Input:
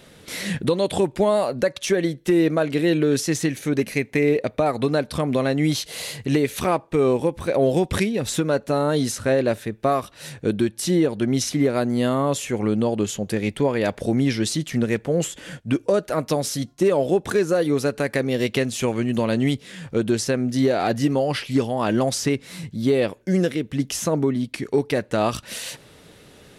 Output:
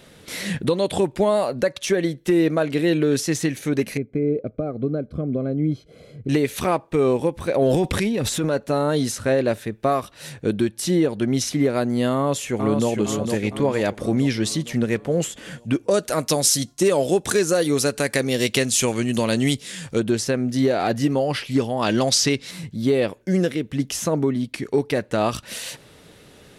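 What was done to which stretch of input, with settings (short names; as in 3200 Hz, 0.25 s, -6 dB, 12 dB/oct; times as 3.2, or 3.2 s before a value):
3.97–6.29 running mean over 48 samples
7.62–8.57 transient shaper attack -5 dB, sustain +8 dB
12.13–12.89 echo throw 0.46 s, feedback 55%, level -5.5 dB
15.91–20 bell 8200 Hz +12.5 dB 2.2 oct
21.82–22.51 bell 4600 Hz +10.5 dB 1.7 oct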